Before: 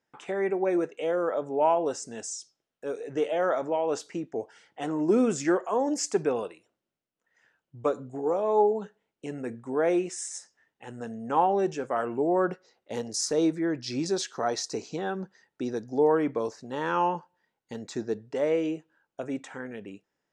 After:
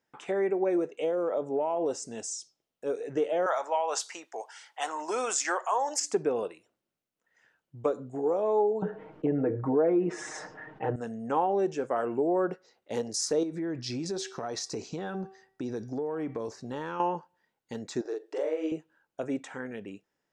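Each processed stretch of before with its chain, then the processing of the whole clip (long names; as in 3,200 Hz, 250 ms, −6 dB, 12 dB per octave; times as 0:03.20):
0:00.80–0:02.90: downward compressor, threshold −24 dBFS + parametric band 1,600 Hz −5.5 dB 0.56 octaves
0:03.46–0:06.00: high-pass with resonance 890 Hz, resonance Q 2 + parametric band 7,800 Hz +11 dB 2.8 octaves
0:08.82–0:10.96: low-pass filter 1,200 Hz + comb filter 6.5 ms, depth 92% + envelope flattener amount 50%
0:13.43–0:17.00: low-shelf EQ 130 Hz +9.5 dB + hum removal 384.1 Hz, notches 15 + downward compressor 10 to 1, threshold −30 dBFS
0:18.01–0:18.72: downward compressor 5 to 1, threshold −31 dBFS + linear-phase brick-wall high-pass 290 Hz + double-tracking delay 44 ms −2 dB
whole clip: dynamic equaliser 440 Hz, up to +5 dB, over −34 dBFS, Q 0.8; downward compressor 2 to 1, threshold −28 dBFS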